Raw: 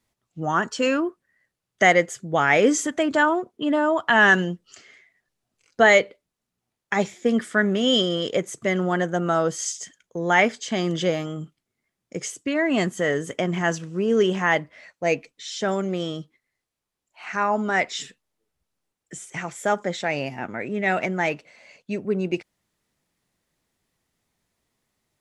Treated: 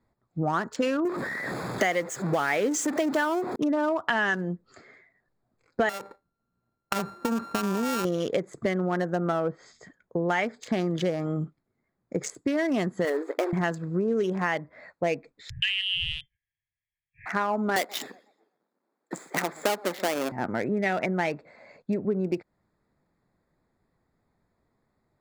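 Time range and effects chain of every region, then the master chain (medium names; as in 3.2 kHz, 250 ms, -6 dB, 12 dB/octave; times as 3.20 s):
1.05–3.56 s: jump at every zero crossing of -25 dBFS + high-pass 180 Hz
5.89–8.05 s: sorted samples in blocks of 32 samples + compression 16:1, threshold -23 dBFS
9.32–10.29 s: low-pass that closes with the level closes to 2.1 kHz, closed at -19.5 dBFS + treble shelf 4.6 kHz -10.5 dB
13.05–13.53 s: block-companded coder 3-bit + brick-wall FIR high-pass 280 Hz + treble shelf 3.6 kHz -10.5 dB
15.50–17.26 s: frequency inversion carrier 3.3 kHz + brick-wall FIR band-stop 160–1600 Hz
17.76–20.32 s: square wave that keeps the level + high-pass 240 Hz 24 dB/octave + modulated delay 124 ms, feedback 35%, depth 193 cents, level -23.5 dB
whole clip: local Wiener filter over 15 samples; compression 6:1, threshold -29 dBFS; trim +5.5 dB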